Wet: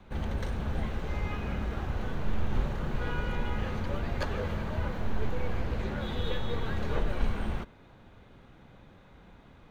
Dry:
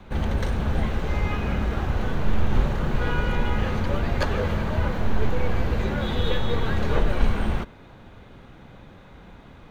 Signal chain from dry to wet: 5.57–6.02 Doppler distortion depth 0.21 ms; gain -8 dB

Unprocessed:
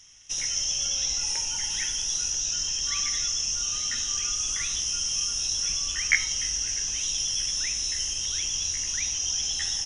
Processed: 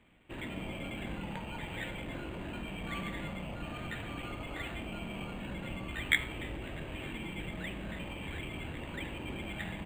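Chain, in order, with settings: HPF 41 Hz; air absorption 250 m; decimation joined by straight lines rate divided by 8×; gain +1 dB

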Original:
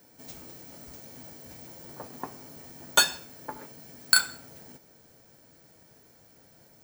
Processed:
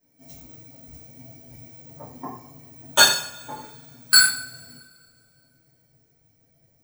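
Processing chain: per-bin expansion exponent 1.5; two-slope reverb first 0.53 s, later 2.3 s, from -25 dB, DRR -10 dB; gain -2 dB

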